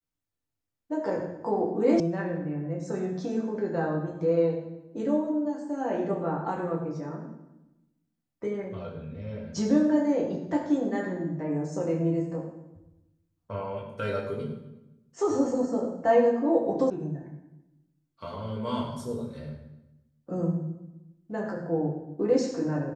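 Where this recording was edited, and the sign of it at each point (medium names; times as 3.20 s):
2.00 s: sound stops dead
16.90 s: sound stops dead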